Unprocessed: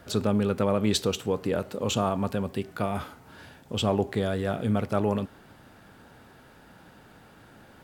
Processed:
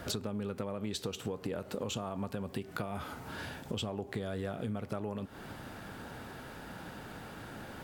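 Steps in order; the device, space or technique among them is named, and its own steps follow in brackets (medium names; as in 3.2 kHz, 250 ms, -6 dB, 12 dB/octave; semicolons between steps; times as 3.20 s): serial compression, peaks first (compression, threshold -33 dBFS, peak gain reduction 13.5 dB; compression 2.5:1, threshold -43 dBFS, peak gain reduction 9 dB); trim +6.5 dB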